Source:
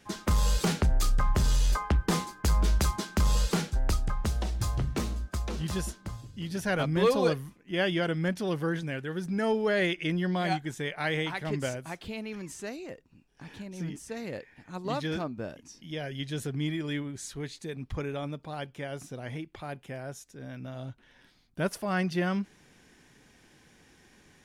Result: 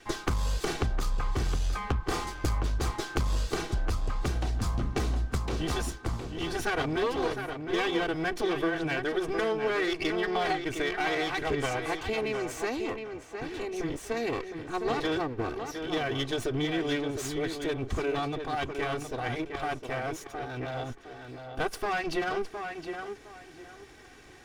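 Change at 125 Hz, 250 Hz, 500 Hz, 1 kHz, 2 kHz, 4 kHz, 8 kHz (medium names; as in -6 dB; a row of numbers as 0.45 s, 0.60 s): -3.0 dB, -0.5 dB, +1.5 dB, +3.5 dB, +2.5 dB, +1.0 dB, -2.5 dB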